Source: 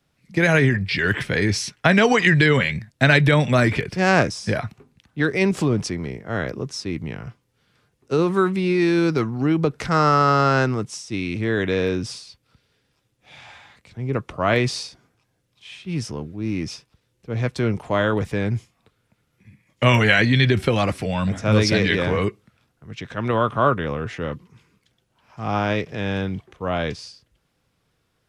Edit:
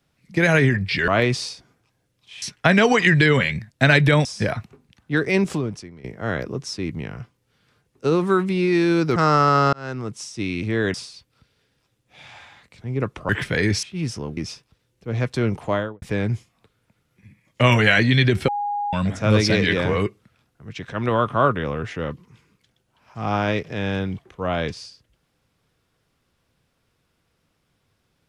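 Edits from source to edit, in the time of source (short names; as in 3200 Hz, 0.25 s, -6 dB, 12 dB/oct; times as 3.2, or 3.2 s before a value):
1.08–1.62 swap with 14.42–15.76
3.45–4.32 cut
5.5–6.11 fade out quadratic, to -15.5 dB
9.23–9.89 cut
10.46–11.02 fade in
11.67–12.07 cut
16.3–16.59 cut
17.88–18.24 studio fade out
20.7–21.15 bleep 821 Hz -22 dBFS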